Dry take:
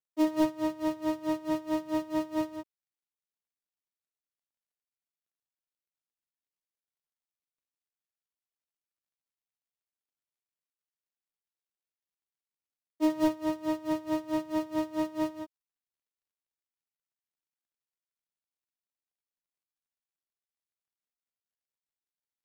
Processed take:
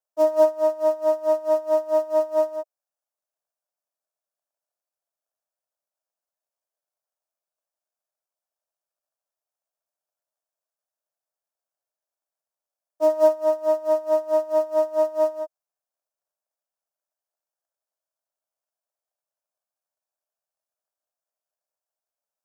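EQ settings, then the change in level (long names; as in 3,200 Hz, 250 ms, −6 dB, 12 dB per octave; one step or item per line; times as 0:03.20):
high-pass with resonance 620 Hz, resonance Q 4.9
Butterworth band-reject 2,000 Hz, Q 7.7
flat-topped bell 2,900 Hz −9 dB 1.3 octaves
+2.5 dB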